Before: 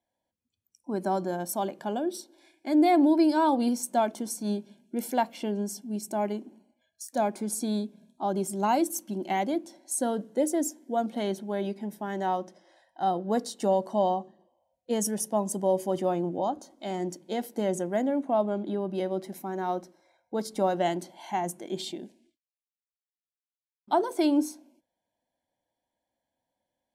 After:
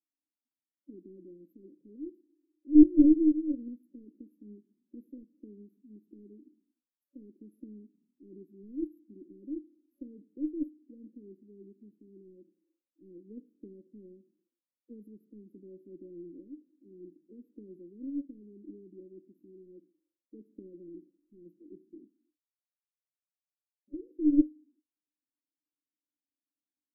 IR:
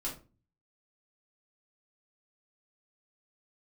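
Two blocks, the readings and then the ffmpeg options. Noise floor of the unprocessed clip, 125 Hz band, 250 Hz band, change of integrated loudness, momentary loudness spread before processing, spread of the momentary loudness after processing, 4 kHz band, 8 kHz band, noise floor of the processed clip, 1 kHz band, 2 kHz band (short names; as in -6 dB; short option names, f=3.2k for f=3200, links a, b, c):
under -85 dBFS, under -15 dB, -1.0 dB, +2.0 dB, 10 LU, 25 LU, under -40 dB, under -40 dB, under -85 dBFS, under -40 dB, under -40 dB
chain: -filter_complex "[0:a]asplit=3[a][b][c];[a]bandpass=f=300:t=q:w=8,volume=0dB[d];[b]bandpass=f=870:t=q:w=8,volume=-6dB[e];[c]bandpass=f=2.24k:t=q:w=8,volume=-9dB[f];[d][e][f]amix=inputs=3:normalize=0,aeval=exprs='0.178*(cos(1*acos(clip(val(0)/0.178,-1,1)))-cos(1*PI/2))+0.0631*(cos(2*acos(clip(val(0)/0.178,-1,1)))-cos(2*PI/2))+0.0447*(cos(3*acos(clip(val(0)/0.178,-1,1)))-cos(3*PI/2))+0.0178*(cos(4*acos(clip(val(0)/0.178,-1,1)))-cos(4*PI/2))+0.00224*(cos(6*acos(clip(val(0)/0.178,-1,1)))-cos(6*PI/2))':c=same,afftfilt=real='re*(1-between(b*sr/4096,570,11000))':imag='im*(1-between(b*sr/4096,570,11000))':win_size=4096:overlap=0.75,volume=7dB"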